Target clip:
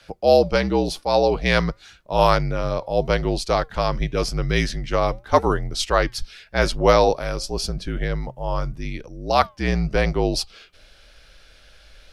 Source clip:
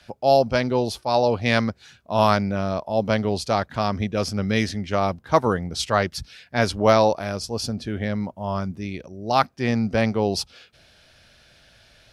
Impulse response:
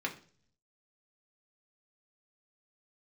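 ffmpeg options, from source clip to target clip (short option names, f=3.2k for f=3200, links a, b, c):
-af "asubboost=boost=5:cutoff=73,afreqshift=-54,flanger=delay=1.9:depth=2.9:regen=-90:speed=0.88:shape=triangular,volume=6.5dB"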